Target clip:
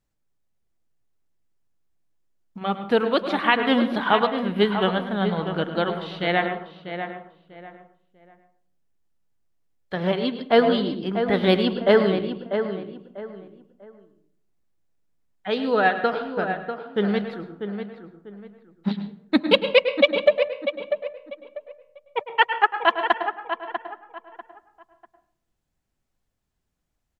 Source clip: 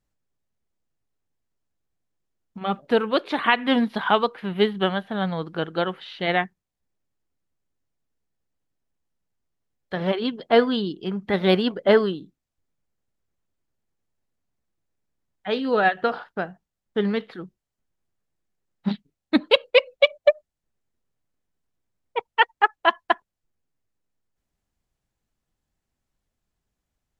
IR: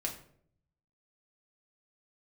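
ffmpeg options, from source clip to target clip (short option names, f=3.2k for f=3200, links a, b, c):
-filter_complex "[0:a]asplit=2[a][b];[b]adelay=644,lowpass=f=2.2k:p=1,volume=-8dB,asplit=2[c][d];[d]adelay=644,lowpass=f=2.2k:p=1,volume=0.29,asplit=2[e][f];[f]adelay=644,lowpass=f=2.2k:p=1,volume=0.29[g];[a][c][e][g]amix=inputs=4:normalize=0,asplit=2[h][i];[1:a]atrim=start_sample=2205,highshelf=f=4.3k:g=-7.5,adelay=104[j];[i][j]afir=irnorm=-1:irlink=0,volume=-10dB[k];[h][k]amix=inputs=2:normalize=0"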